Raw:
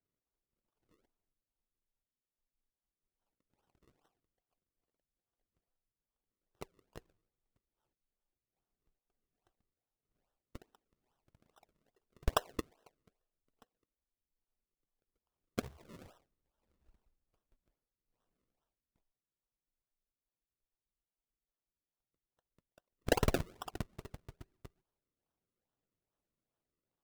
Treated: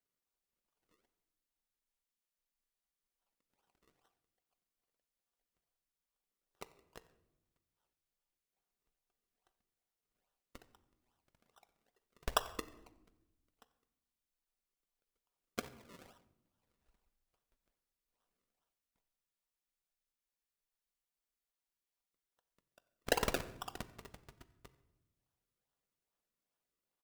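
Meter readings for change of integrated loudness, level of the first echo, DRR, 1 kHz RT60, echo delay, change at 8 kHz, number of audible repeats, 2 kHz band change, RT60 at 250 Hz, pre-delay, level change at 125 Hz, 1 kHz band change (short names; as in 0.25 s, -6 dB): -1.5 dB, -22.5 dB, 11.0 dB, 0.85 s, 91 ms, +1.5 dB, 1, +1.0 dB, 1.5 s, 4 ms, -9.5 dB, -0.5 dB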